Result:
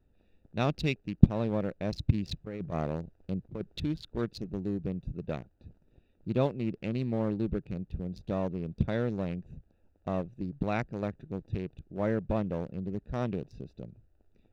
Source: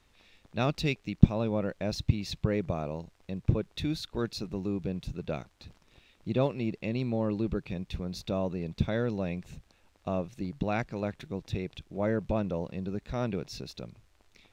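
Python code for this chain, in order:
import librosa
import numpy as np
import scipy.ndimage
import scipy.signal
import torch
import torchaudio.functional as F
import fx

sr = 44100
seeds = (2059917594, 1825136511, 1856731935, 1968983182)

y = fx.wiener(x, sr, points=41)
y = fx.over_compress(y, sr, threshold_db=-33.0, ratio=-0.5, at=(2.14, 3.8))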